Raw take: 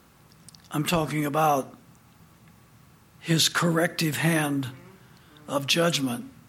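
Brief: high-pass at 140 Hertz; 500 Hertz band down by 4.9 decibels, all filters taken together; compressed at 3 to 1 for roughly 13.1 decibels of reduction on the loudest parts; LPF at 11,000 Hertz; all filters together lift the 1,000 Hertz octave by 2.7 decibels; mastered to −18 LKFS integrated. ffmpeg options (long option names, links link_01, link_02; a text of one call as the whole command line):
ffmpeg -i in.wav -af "highpass=140,lowpass=11000,equalizer=frequency=500:width_type=o:gain=-8.5,equalizer=frequency=1000:width_type=o:gain=7,acompressor=threshold=-36dB:ratio=3,volume=18dB" out.wav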